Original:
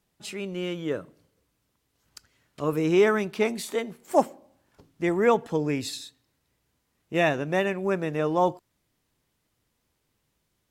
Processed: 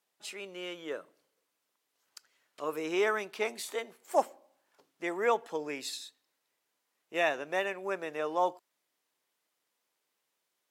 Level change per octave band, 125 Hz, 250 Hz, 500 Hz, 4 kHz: −23.5, −13.5, −8.0, −4.0 decibels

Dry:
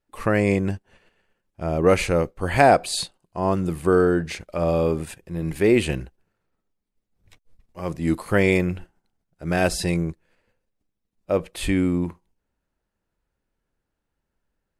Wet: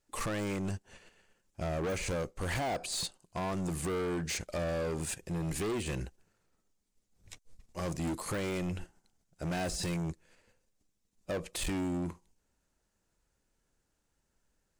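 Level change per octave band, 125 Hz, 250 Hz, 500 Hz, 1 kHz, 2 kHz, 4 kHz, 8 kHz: −11.0, −13.0, −15.0, −14.5, −13.5, −7.5, −4.0 decibels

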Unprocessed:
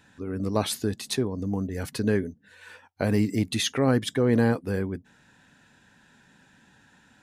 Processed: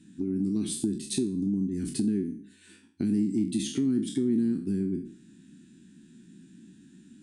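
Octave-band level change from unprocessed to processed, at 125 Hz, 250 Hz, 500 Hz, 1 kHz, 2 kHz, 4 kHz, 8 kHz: −6.5 dB, +0.5 dB, −9.0 dB, below −25 dB, below −15 dB, −8.5 dB, −2.0 dB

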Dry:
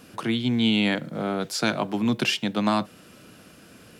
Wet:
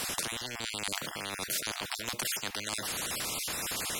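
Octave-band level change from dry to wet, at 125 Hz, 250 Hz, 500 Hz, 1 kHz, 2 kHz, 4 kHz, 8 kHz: −16.0, −22.0, −13.0, −9.0, −6.0, −5.0, +7.0 decibels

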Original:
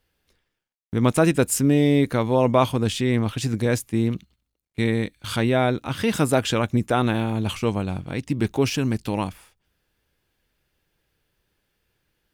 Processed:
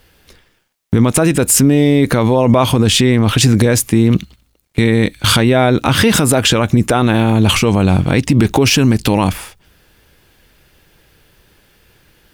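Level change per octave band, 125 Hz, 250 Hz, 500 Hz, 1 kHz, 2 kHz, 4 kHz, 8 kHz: +11.0, +10.0, +7.5, +8.0, +11.0, +15.0, +14.5 decibels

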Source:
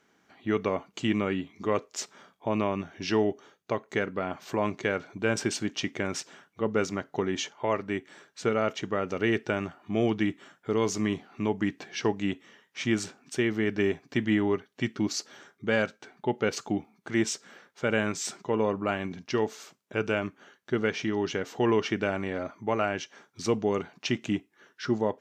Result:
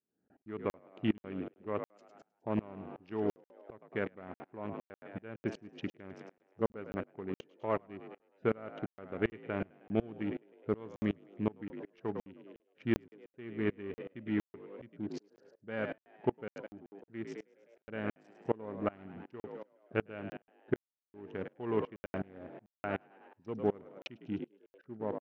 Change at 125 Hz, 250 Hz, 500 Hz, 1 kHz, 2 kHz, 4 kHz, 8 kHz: −8.5 dB, −9.0 dB, −9.0 dB, −10.5 dB, −13.0 dB, −18.5 dB, below −30 dB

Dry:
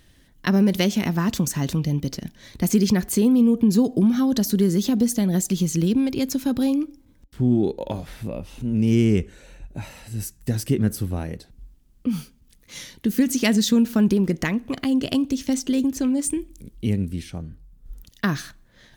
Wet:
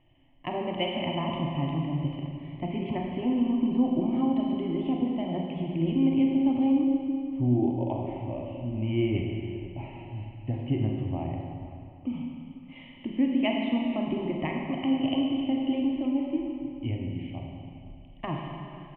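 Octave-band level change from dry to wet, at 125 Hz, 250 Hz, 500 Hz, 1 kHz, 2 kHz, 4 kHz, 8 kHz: −6.5 dB, −6.0 dB, −5.5 dB, +0.5 dB, −8.5 dB, −7.0 dB, below −40 dB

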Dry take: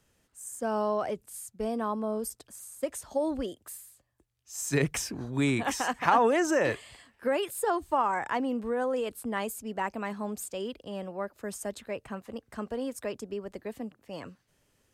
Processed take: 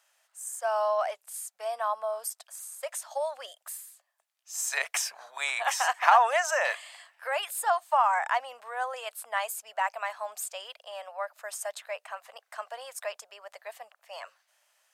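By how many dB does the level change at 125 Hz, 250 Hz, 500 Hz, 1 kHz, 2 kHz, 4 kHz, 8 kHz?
below −40 dB, below −40 dB, −2.5 dB, +4.0 dB, +4.5 dB, +4.0 dB, +3.5 dB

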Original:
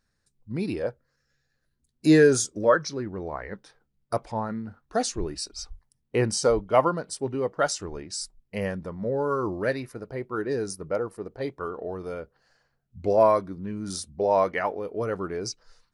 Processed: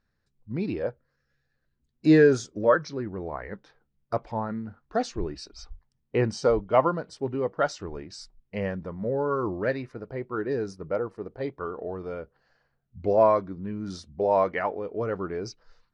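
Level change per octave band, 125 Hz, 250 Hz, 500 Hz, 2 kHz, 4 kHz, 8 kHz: 0.0, −0.5, −0.5, −1.5, −7.0, −13.0 decibels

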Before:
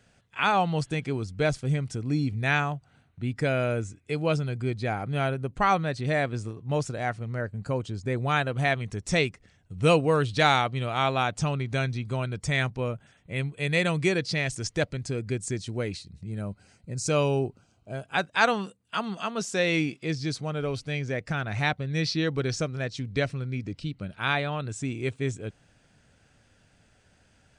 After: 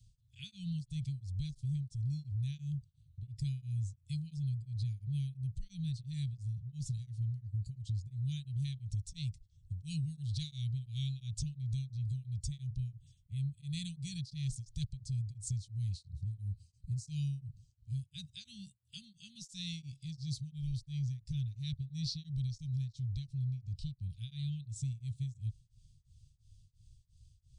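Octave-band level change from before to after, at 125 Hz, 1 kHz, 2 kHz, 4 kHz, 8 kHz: −5.5 dB, below −40 dB, −33.5 dB, −13.5 dB, −11.5 dB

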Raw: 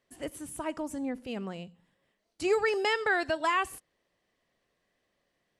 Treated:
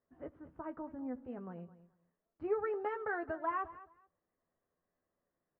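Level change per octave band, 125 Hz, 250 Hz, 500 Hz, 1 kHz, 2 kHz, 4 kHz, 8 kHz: −7.0 dB, −7.5 dB, −8.0 dB, −7.5 dB, −14.0 dB, below −30 dB, below −35 dB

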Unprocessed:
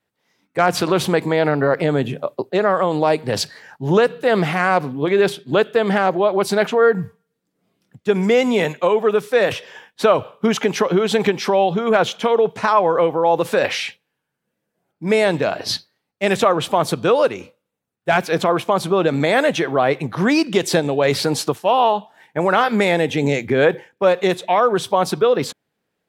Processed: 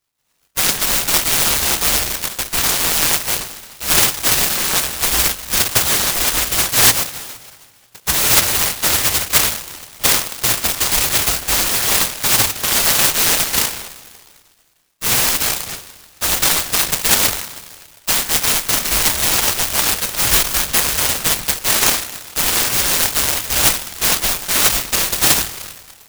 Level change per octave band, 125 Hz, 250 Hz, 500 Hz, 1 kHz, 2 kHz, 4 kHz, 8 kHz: −4.0, −10.0, −13.5, −5.0, +2.5, +10.5, +19.5 decibels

